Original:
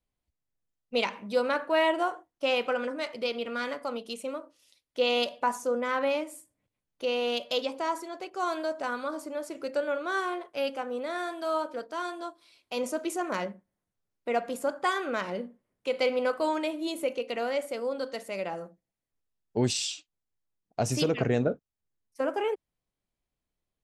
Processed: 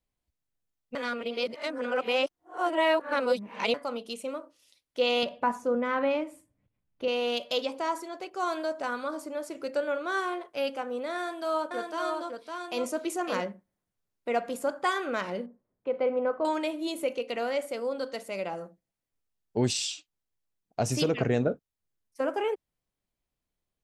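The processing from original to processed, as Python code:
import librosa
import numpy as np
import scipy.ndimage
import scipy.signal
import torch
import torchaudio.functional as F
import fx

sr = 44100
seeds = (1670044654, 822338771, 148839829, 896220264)

y = fx.bass_treble(x, sr, bass_db=9, treble_db=-12, at=(5.23, 7.08))
y = fx.echo_single(y, sr, ms=558, db=-4.0, at=(11.15, 13.41))
y = fx.lowpass(y, sr, hz=1200.0, slope=12, at=(15.46, 16.45))
y = fx.notch(y, sr, hz=1800.0, q=12.0, at=(18.17, 18.59))
y = fx.edit(y, sr, fx.reverse_span(start_s=0.95, length_s=2.79), tone=tone)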